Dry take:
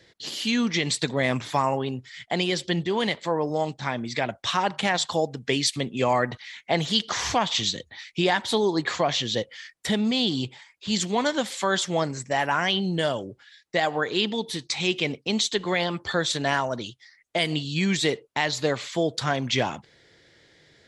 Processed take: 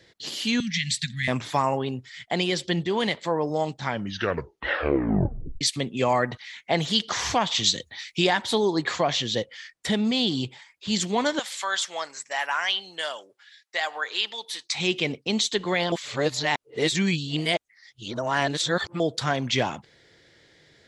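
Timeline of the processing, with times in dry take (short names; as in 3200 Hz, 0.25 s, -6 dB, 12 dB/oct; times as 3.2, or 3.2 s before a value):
0.6–1.28 Chebyshev band-stop 210–1700 Hz, order 4
3.81 tape stop 1.80 s
7.64–8.27 high shelf 3100 Hz +7.5 dB
9.46–10.05 LPF 9500 Hz
11.39–14.75 HPF 980 Hz
15.92–19 reverse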